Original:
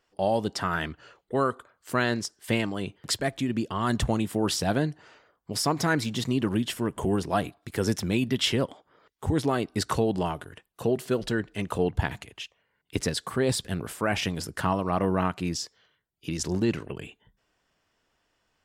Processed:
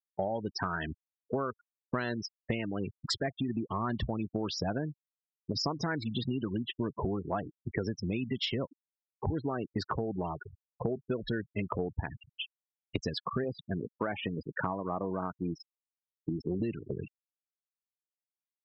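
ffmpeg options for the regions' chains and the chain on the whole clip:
-filter_complex "[0:a]asettb=1/sr,asplit=3[s0][s1][s2];[s0]atrim=end=13.444[s3];[s1]atrim=start=13.44:end=16.6,asetpts=PTS-STARTPTS,afade=t=in:d=0.004:c=qsin,afade=t=out:st=3.156:d=0.004:c=qsin,highpass=f=190:p=1,aemphasis=mode=reproduction:type=75kf[s4];[s2]atrim=start=16.596[s5];[s3][s4]acrossfade=d=0.004:c1=hsin:c2=qsin[s6];[s6][s5]acrossfade=d=0.004:c1=qsin:c2=hsin,acrossover=split=6800[s7][s8];[s8]acompressor=threshold=0.00501:ratio=4:attack=1:release=60[s9];[s7][s9]amix=inputs=2:normalize=0,afftfilt=real='re*gte(hypot(re,im),0.0447)':imag='im*gte(hypot(re,im),0.0447)':win_size=1024:overlap=0.75,acompressor=threshold=0.0224:ratio=12,volume=1.58"

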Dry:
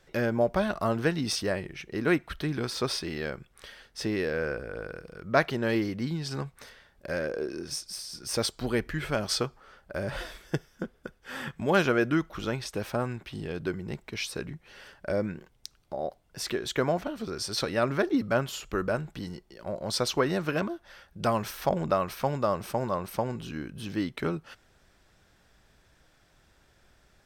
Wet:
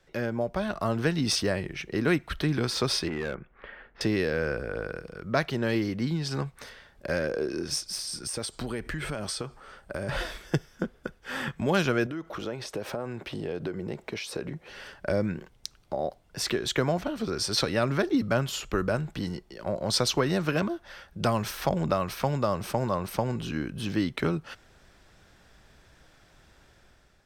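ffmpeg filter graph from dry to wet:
-filter_complex "[0:a]asettb=1/sr,asplit=3[s0][s1][s2];[s0]atrim=end=3.084[s3];[s1]atrim=start=3.08:end=4.01,asetpts=PTS-STARTPTS,afade=t=in:d=0.004:c=qsin,afade=t=out:st=0.926:d=0.004:c=qsin,lowpass=f=2200:w=0.5412,lowpass=f=2200:w=1.3066,equalizer=f=93:w=1.8:g=-12,volume=39.8,asoftclip=hard,volume=0.0251[s4];[s2]atrim=start=4.006[s5];[s3][s4]acrossfade=d=0.004:c1=hsin:c2=qsin[s6];[s6][s5]acrossfade=d=0.004:c1=qsin:c2=hsin,asettb=1/sr,asplit=3[s7][s8][s9];[s7]atrim=end=8.074[s10];[s8]atrim=start=8.07:end=10.09,asetpts=PTS-STARTPTS,afade=t=in:d=0.004:c=qsin,afade=t=out:st=2.016:d=0.004:c=qsin,equalizer=f=8600:w=5.7:g=11,acompressor=threshold=0.02:ratio=10:attack=3.2:release=140:knee=1:detection=peak[s11];[s9]atrim=start=10.086[s12];[s10][s11]acrossfade=d=0.004:c1=hsin:c2=qsin[s13];[s13][s12]acrossfade=d=0.004:c1=qsin:c2=hsin,asettb=1/sr,asplit=3[s14][s15][s16];[s14]atrim=end=12.064[s17];[s15]atrim=start=12.06:end=14.7,asetpts=PTS-STARTPTS,afade=t=in:d=0.004:c=qsin,afade=t=out:st=2.636:d=0.004:c=qsin,highpass=f=100:p=1,acompressor=threshold=0.0126:ratio=8:attack=3.2:release=140:knee=1:detection=peak,equalizer=f=510:w=0.92:g=8[s18];[s16]atrim=start=14.696[s19];[s17][s18]acrossfade=d=0.004:c1=hsin:c2=qsin[s20];[s20][s19]acrossfade=d=0.004:c1=qsin:c2=hsin,dynaudnorm=f=580:g=3:m=2.51,highshelf=f=11000:g=-6,acrossover=split=190|3000[s21][s22][s23];[s22]acompressor=threshold=0.0562:ratio=2[s24];[s21][s24][s23]amix=inputs=3:normalize=0,volume=0.75"

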